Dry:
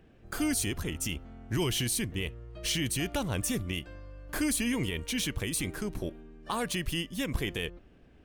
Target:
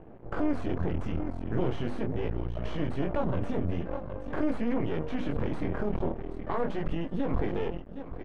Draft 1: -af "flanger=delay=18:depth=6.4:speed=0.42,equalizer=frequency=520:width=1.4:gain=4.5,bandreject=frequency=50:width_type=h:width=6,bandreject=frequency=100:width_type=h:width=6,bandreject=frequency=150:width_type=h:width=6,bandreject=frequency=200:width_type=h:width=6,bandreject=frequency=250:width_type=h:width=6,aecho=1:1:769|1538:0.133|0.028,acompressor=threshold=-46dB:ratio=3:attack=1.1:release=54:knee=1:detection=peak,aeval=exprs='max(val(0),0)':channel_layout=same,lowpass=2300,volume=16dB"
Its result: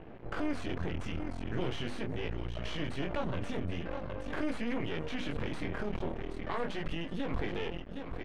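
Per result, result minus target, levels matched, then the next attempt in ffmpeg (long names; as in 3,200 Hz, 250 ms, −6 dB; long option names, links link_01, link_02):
2,000 Hz band +7.0 dB; downward compressor: peak gain reduction +6 dB
-af "flanger=delay=18:depth=6.4:speed=0.42,equalizer=frequency=520:width=1.4:gain=4.5,bandreject=frequency=50:width_type=h:width=6,bandreject=frequency=100:width_type=h:width=6,bandreject=frequency=150:width_type=h:width=6,bandreject=frequency=200:width_type=h:width=6,bandreject=frequency=250:width_type=h:width=6,aecho=1:1:769|1538:0.133|0.028,acompressor=threshold=-46dB:ratio=3:attack=1.1:release=54:knee=1:detection=peak,aeval=exprs='max(val(0),0)':channel_layout=same,lowpass=1100,volume=16dB"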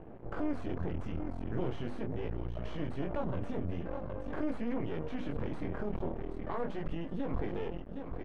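downward compressor: peak gain reduction +6 dB
-af "flanger=delay=18:depth=6.4:speed=0.42,equalizer=frequency=520:width=1.4:gain=4.5,bandreject=frequency=50:width_type=h:width=6,bandreject=frequency=100:width_type=h:width=6,bandreject=frequency=150:width_type=h:width=6,bandreject=frequency=200:width_type=h:width=6,bandreject=frequency=250:width_type=h:width=6,aecho=1:1:769|1538:0.133|0.028,acompressor=threshold=-37dB:ratio=3:attack=1.1:release=54:knee=1:detection=peak,aeval=exprs='max(val(0),0)':channel_layout=same,lowpass=1100,volume=16dB"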